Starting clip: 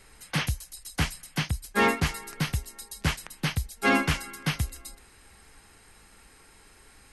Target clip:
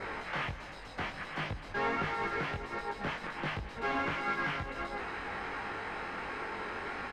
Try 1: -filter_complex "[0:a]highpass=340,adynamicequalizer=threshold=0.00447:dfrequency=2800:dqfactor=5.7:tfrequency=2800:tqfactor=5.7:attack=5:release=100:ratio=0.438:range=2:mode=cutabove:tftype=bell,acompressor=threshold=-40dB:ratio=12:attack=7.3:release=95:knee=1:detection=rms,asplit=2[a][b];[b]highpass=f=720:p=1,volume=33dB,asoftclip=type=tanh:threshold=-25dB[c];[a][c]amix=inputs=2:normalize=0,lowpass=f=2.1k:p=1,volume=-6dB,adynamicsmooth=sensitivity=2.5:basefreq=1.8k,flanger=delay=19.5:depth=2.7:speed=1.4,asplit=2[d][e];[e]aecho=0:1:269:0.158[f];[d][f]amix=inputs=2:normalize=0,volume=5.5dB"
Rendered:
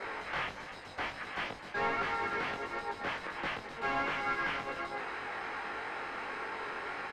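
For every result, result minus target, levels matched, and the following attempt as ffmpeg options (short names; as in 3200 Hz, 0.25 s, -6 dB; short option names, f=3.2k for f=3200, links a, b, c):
echo 76 ms late; 250 Hz band -4.0 dB
-filter_complex "[0:a]highpass=340,adynamicequalizer=threshold=0.00447:dfrequency=2800:dqfactor=5.7:tfrequency=2800:tqfactor=5.7:attack=5:release=100:ratio=0.438:range=2:mode=cutabove:tftype=bell,acompressor=threshold=-40dB:ratio=12:attack=7.3:release=95:knee=1:detection=rms,asplit=2[a][b];[b]highpass=f=720:p=1,volume=33dB,asoftclip=type=tanh:threshold=-25dB[c];[a][c]amix=inputs=2:normalize=0,lowpass=f=2.1k:p=1,volume=-6dB,adynamicsmooth=sensitivity=2.5:basefreq=1.8k,flanger=delay=19.5:depth=2.7:speed=1.4,asplit=2[d][e];[e]aecho=0:1:193:0.158[f];[d][f]amix=inputs=2:normalize=0,volume=5.5dB"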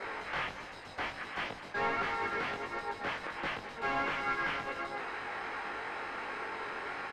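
250 Hz band -4.0 dB
-filter_complex "[0:a]adynamicequalizer=threshold=0.00447:dfrequency=2800:dqfactor=5.7:tfrequency=2800:tqfactor=5.7:attack=5:release=100:ratio=0.438:range=2:mode=cutabove:tftype=bell,acompressor=threshold=-40dB:ratio=12:attack=7.3:release=95:knee=1:detection=rms,asplit=2[a][b];[b]highpass=f=720:p=1,volume=33dB,asoftclip=type=tanh:threshold=-25dB[c];[a][c]amix=inputs=2:normalize=0,lowpass=f=2.1k:p=1,volume=-6dB,adynamicsmooth=sensitivity=2.5:basefreq=1.8k,flanger=delay=19.5:depth=2.7:speed=1.4,asplit=2[d][e];[e]aecho=0:1:193:0.158[f];[d][f]amix=inputs=2:normalize=0,volume=5.5dB"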